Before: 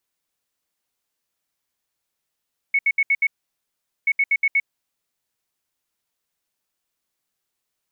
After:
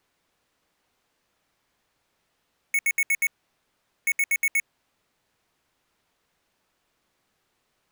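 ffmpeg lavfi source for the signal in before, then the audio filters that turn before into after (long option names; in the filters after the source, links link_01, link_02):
-f lavfi -i "aevalsrc='0.188*sin(2*PI*2210*t)*clip(min(mod(mod(t,1.33),0.12),0.05-mod(mod(t,1.33),0.12))/0.005,0,1)*lt(mod(t,1.33),0.6)':duration=2.66:sample_rate=44100"
-filter_complex "[0:a]lowpass=frequency=1900:poles=1,asplit=2[link_01][link_02];[link_02]aeval=exprs='0.126*sin(PI/2*7.08*val(0)/0.126)':channel_layout=same,volume=-8dB[link_03];[link_01][link_03]amix=inputs=2:normalize=0"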